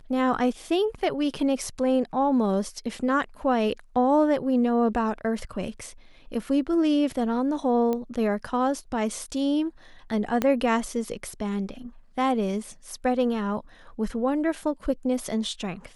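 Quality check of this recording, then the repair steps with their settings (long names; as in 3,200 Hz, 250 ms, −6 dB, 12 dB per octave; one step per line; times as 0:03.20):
0:07.93: click −16 dBFS
0:10.42: click −10 dBFS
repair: click removal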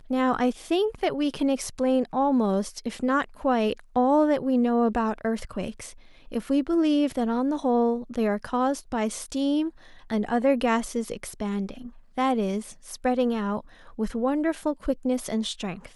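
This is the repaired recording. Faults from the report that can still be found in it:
0:10.42: click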